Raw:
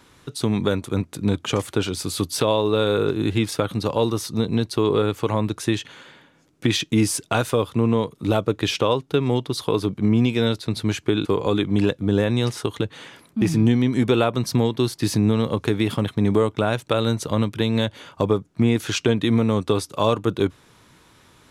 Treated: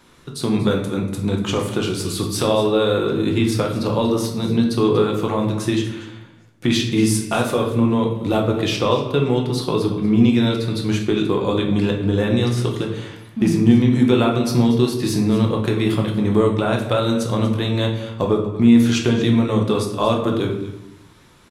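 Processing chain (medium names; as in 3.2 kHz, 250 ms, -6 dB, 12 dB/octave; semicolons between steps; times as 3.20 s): on a send: delay 238 ms -15.5 dB; on the sum: simulated room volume 190 m³, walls mixed, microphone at 0.88 m; trim -1 dB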